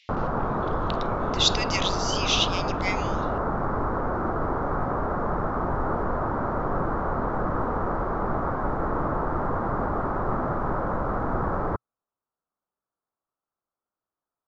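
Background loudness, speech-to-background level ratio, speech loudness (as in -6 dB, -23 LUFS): -27.5 LUFS, 1.5 dB, -26.0 LUFS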